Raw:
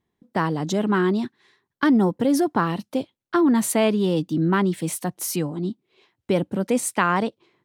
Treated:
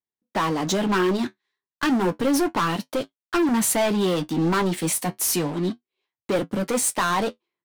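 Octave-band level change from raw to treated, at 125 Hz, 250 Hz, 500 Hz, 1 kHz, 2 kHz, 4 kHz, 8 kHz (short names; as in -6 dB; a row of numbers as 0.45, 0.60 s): -2.5, -2.5, -0.5, +0.5, 0.0, +4.5, +5.0 dB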